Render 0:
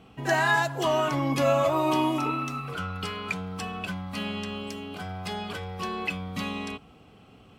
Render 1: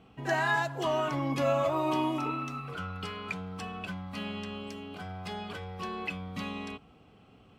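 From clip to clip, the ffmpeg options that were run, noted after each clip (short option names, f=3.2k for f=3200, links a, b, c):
-af "highshelf=f=5.9k:g=-7,volume=-4.5dB"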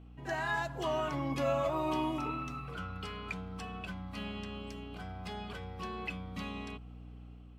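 -af "aeval=exprs='val(0)+0.00708*(sin(2*PI*60*n/s)+sin(2*PI*2*60*n/s)/2+sin(2*PI*3*60*n/s)/3+sin(2*PI*4*60*n/s)/4+sin(2*PI*5*60*n/s)/5)':c=same,dynaudnorm=f=220:g=5:m=4dB,volume=-8dB"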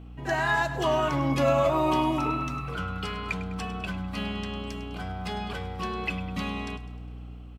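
-af "aecho=1:1:102|204|306|408|510:0.2|0.104|0.054|0.0281|0.0146,volume=8.5dB"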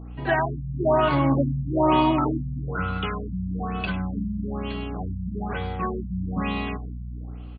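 -af "afftfilt=real='re*lt(b*sr/1024,220*pow(4900/220,0.5+0.5*sin(2*PI*1.1*pts/sr)))':imag='im*lt(b*sr/1024,220*pow(4900/220,0.5+0.5*sin(2*PI*1.1*pts/sr)))':win_size=1024:overlap=0.75,volume=5.5dB"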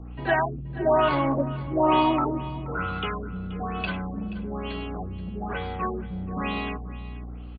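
-filter_complex "[0:a]acrossover=split=290[a][b];[a]asoftclip=type=tanh:threshold=-31dB[c];[c][b]amix=inputs=2:normalize=0,aecho=1:1:479:0.15" -ar 16000 -c:a aac -b:a 48k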